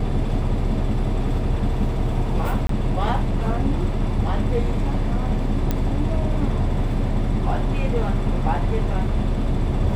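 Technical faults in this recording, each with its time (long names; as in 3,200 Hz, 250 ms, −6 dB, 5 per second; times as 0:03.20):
0:02.67–0:02.69: drop-out 23 ms
0:05.71: click −9 dBFS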